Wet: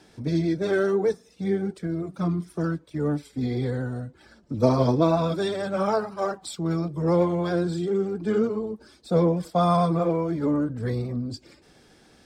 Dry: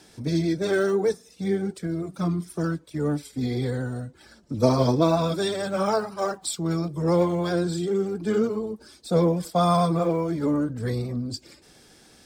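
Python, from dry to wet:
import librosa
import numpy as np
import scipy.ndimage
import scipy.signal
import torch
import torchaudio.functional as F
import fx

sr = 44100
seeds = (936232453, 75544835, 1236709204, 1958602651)

y = fx.high_shelf(x, sr, hz=4800.0, db=-11.0)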